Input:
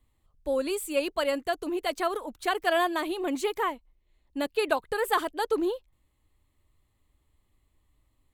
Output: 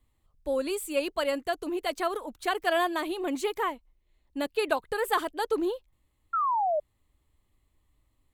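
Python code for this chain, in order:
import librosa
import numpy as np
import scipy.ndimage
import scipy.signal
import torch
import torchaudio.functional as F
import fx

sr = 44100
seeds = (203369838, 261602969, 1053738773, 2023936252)

y = fx.spec_paint(x, sr, seeds[0], shape='fall', start_s=6.33, length_s=0.47, low_hz=580.0, high_hz=1400.0, level_db=-25.0)
y = y * 10.0 ** (-1.0 / 20.0)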